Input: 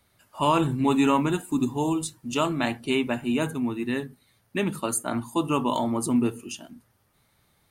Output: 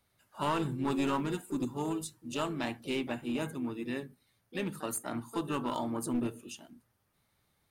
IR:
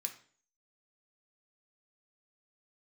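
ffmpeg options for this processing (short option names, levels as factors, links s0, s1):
-filter_complex "[0:a]aeval=exprs='clip(val(0),-1,0.0944)':c=same,asplit=2[s0][s1];[s1]asetrate=58866,aresample=44100,atempo=0.749154,volume=0.282[s2];[s0][s2]amix=inputs=2:normalize=0,volume=0.355"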